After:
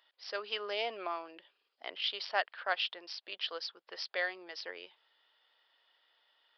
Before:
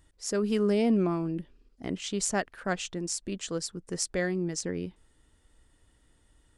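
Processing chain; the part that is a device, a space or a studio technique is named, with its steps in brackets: musical greeting card (resampled via 11.025 kHz; high-pass 630 Hz 24 dB/octave; peaking EQ 3.2 kHz +7 dB 0.56 oct)

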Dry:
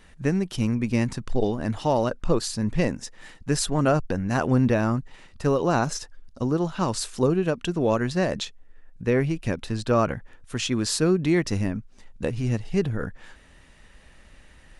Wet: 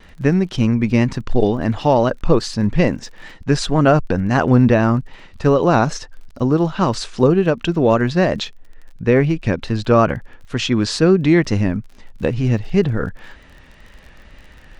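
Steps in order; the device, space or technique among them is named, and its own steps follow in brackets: lo-fi chain (low-pass 5.3 kHz 12 dB/octave; wow and flutter; crackle 33 per s -41 dBFS); treble shelf 8.1 kHz -6 dB; trim +8 dB

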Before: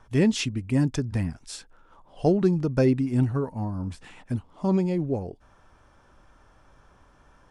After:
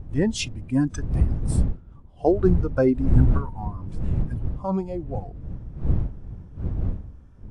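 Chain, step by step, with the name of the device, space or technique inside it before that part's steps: high-pass 110 Hz 12 dB/octave; spectral noise reduction 14 dB; peaking EQ 8.4 kHz +2 dB 0.93 oct; smartphone video outdoors (wind noise 90 Hz -28 dBFS; level rider gain up to 3.5 dB; AAC 64 kbps 24 kHz)

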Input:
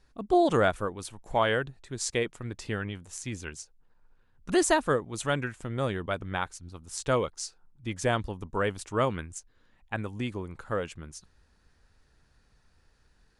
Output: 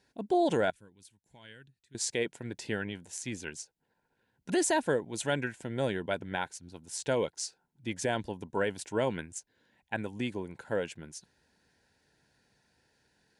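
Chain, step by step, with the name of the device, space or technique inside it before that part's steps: PA system with an anti-feedback notch (high-pass 150 Hz 12 dB/octave; Butterworth band-stop 1.2 kHz, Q 3.3; peak limiter -18.5 dBFS, peak gain reduction 6 dB); 0.70–1.95 s: amplifier tone stack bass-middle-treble 6-0-2

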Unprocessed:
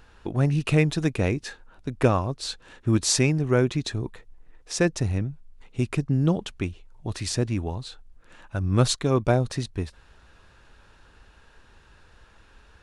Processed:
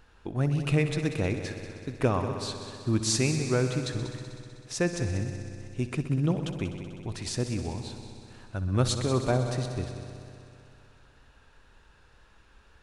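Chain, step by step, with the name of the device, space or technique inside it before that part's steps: multi-head tape echo (multi-head delay 63 ms, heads all three, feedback 70%, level -15 dB; wow and flutter 18 cents); trim -5 dB

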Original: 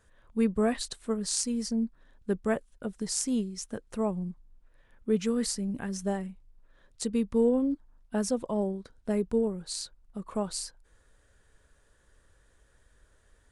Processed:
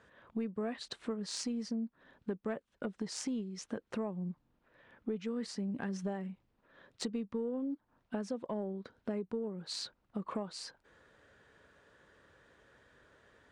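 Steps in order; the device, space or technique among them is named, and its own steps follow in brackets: AM radio (band-pass 150–3500 Hz; compression 8:1, threshold -40 dBFS, peak gain reduction 19 dB; saturation -30.5 dBFS, distortion -26 dB); trim +6 dB

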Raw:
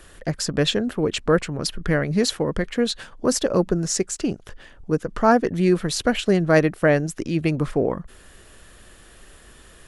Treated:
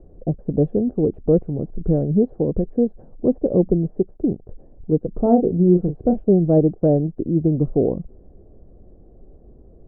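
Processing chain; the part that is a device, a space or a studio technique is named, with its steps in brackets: under water (low-pass 500 Hz 24 dB/octave; peaking EQ 750 Hz +8 dB 0.31 oct); 5.17–6.23 s: doubling 34 ms -7.5 dB; trim +4 dB

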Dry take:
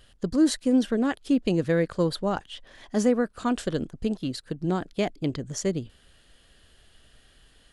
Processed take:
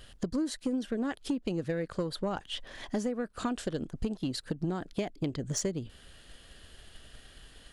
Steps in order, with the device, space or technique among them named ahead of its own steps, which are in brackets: drum-bus smash (transient shaper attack +4 dB, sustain 0 dB; compression 12:1, threshold -31 dBFS, peak gain reduction 17.5 dB; saturation -25.5 dBFS, distortion -18 dB); trim +4 dB

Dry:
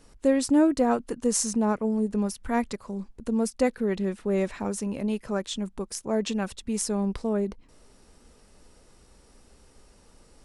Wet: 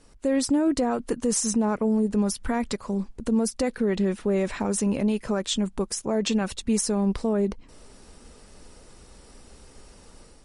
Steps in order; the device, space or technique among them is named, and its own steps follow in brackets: low-bitrate web radio (level rider gain up to 7 dB; peak limiter -15 dBFS, peak gain reduction 10.5 dB; MP3 48 kbps 44.1 kHz)

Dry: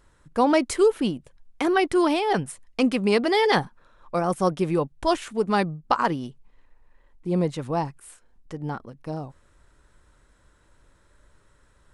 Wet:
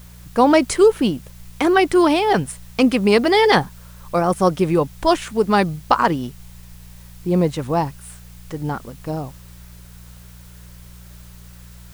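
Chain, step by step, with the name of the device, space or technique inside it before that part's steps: video cassette with head-switching buzz (mains buzz 60 Hz, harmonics 3, -48 dBFS -4 dB/octave; white noise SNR 30 dB); trim +6 dB

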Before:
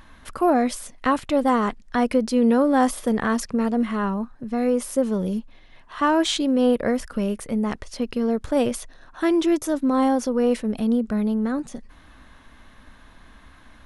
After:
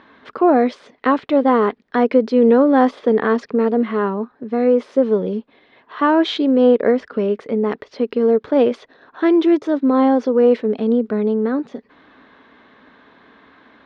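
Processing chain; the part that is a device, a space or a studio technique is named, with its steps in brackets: kitchen radio (cabinet simulation 220–3800 Hz, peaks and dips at 270 Hz +3 dB, 430 Hz +10 dB, 2.8 kHz -4 dB); trim +3.5 dB

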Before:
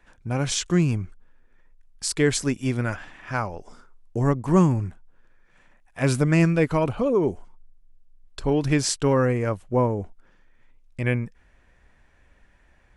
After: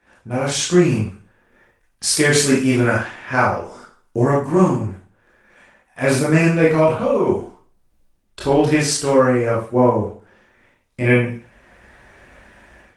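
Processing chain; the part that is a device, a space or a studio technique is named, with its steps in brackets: 6.66–7.26 s: peaking EQ 330 Hz +0.5 dB -> -11 dB 1.6 oct; far-field microphone of a smart speaker (reverberation RT60 0.40 s, pre-delay 19 ms, DRR -7 dB; high-pass 140 Hz 6 dB/octave; level rider gain up to 12 dB; trim -1 dB; Opus 24 kbps 48 kHz)

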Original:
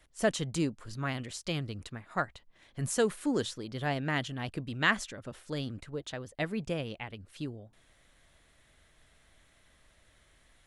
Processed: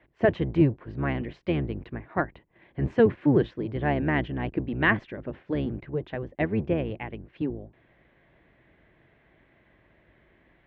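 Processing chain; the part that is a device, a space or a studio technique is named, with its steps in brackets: sub-octave bass pedal (octave divider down 1 oct, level 0 dB; cabinet simulation 67–2300 Hz, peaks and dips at 80 Hz -9 dB, 350 Hz +7 dB, 1.3 kHz -8 dB); trim +6 dB

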